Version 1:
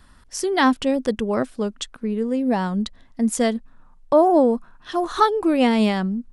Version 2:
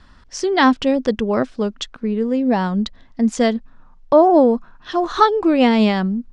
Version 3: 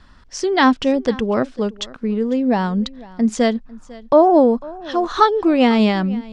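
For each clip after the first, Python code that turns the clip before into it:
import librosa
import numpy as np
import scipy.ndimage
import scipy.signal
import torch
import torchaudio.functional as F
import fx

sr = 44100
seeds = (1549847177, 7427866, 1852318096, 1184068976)

y1 = scipy.signal.sosfilt(scipy.signal.butter(4, 6300.0, 'lowpass', fs=sr, output='sos'), x)
y1 = y1 * 10.0 ** (3.5 / 20.0)
y2 = y1 + 10.0 ** (-21.0 / 20.0) * np.pad(y1, (int(499 * sr / 1000.0), 0))[:len(y1)]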